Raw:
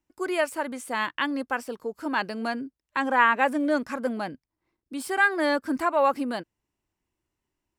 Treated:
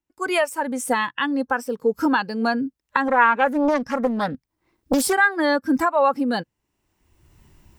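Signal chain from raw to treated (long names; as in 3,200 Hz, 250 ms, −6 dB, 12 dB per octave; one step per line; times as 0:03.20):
camcorder AGC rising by 23 dB per second
noise reduction from a noise print of the clip's start 10 dB
0:03.08–0:05.13: highs frequency-modulated by the lows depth 0.8 ms
level +3.5 dB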